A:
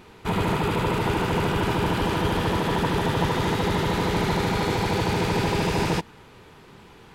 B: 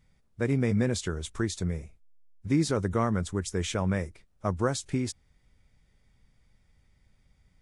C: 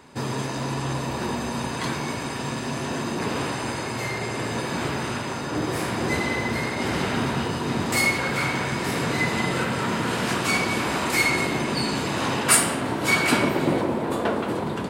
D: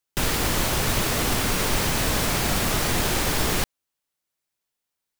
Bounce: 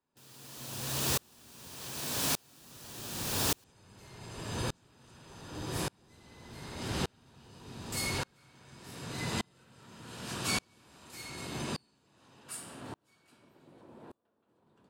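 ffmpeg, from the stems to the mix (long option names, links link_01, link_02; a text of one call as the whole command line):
ffmpeg -i stem1.wav -i stem2.wav -i stem3.wav -i stem4.wav -filter_complex "[0:a]adelay=2350,volume=-10dB[link_01];[1:a]volume=-8.5dB[link_02];[2:a]volume=-1dB,afade=type=out:start_time=11.6:duration=0.39:silence=0.266073,afade=type=out:start_time=13.12:duration=0.59:silence=0.354813[link_03];[3:a]highpass=frequency=220:width=0.5412,highpass=frequency=220:width=1.3066,volume=-0.5dB[link_04];[link_01][link_02][link_03][link_04]amix=inputs=4:normalize=0,equalizer=frequency=2100:width_type=o:width=0.2:gain=-7.5,acrossover=split=140|3000[link_05][link_06][link_07];[link_06]acompressor=threshold=-46dB:ratio=1.5[link_08];[link_05][link_08][link_07]amix=inputs=3:normalize=0,aeval=exprs='val(0)*pow(10,-37*if(lt(mod(-0.85*n/s,1),2*abs(-0.85)/1000),1-mod(-0.85*n/s,1)/(2*abs(-0.85)/1000),(mod(-0.85*n/s,1)-2*abs(-0.85)/1000)/(1-2*abs(-0.85)/1000))/20)':channel_layout=same" out.wav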